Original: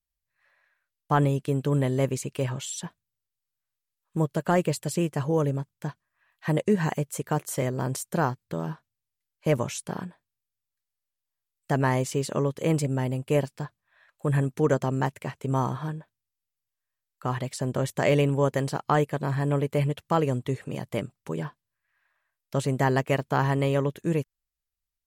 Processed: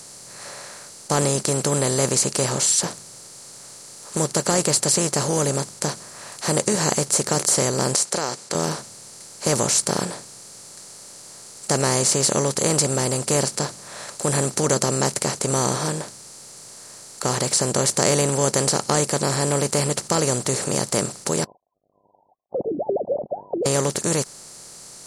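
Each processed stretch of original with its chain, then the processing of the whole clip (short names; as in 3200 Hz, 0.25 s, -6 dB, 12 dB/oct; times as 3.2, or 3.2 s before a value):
7.95–8.55 BPF 520–6700 Hz + compressor 2.5:1, threshold -33 dBFS
21.44–23.66 sine-wave speech + steep low-pass 710 Hz 96 dB/oct
whole clip: per-bin compression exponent 0.4; band shelf 6400 Hz +16 dB; gain -3.5 dB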